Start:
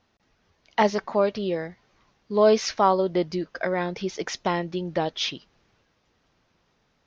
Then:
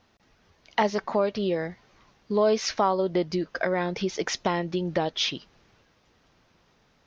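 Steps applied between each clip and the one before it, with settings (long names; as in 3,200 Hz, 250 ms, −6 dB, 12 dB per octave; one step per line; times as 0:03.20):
downward compressor 2 to 1, threshold −30 dBFS, peak gain reduction 9.5 dB
level +4.5 dB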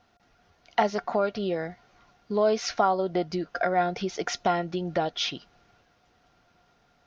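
hollow resonant body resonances 720/1,400 Hz, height 15 dB, ringing for 85 ms
level −2.5 dB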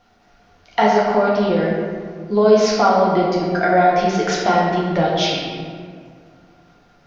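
convolution reverb RT60 2.0 s, pre-delay 6 ms, DRR −4.5 dB
level +4 dB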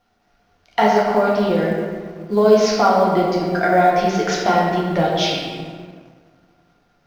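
mu-law and A-law mismatch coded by A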